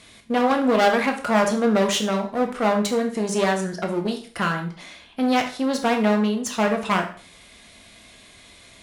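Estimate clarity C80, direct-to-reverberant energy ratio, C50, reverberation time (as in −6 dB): 14.0 dB, 3.5 dB, 9.0 dB, 0.45 s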